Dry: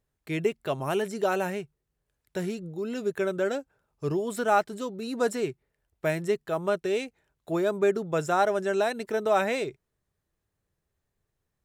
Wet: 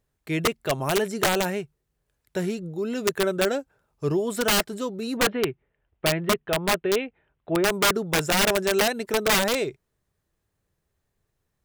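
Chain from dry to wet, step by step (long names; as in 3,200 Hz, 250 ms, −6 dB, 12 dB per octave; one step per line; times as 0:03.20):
0:05.17–0:07.65: Butterworth low-pass 3,300 Hz 48 dB per octave
wrap-around overflow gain 19 dB
level +4 dB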